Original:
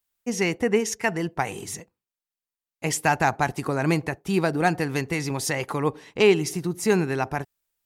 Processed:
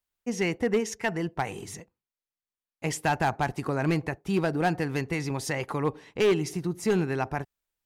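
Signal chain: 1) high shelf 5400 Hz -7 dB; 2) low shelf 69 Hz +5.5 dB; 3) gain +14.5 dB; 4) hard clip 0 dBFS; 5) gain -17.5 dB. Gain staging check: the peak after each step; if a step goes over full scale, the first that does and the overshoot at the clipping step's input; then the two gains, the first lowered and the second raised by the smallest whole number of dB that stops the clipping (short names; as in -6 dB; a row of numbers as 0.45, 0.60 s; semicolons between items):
-7.0, -6.5, +8.0, 0.0, -17.5 dBFS; step 3, 8.0 dB; step 3 +6.5 dB, step 5 -9.5 dB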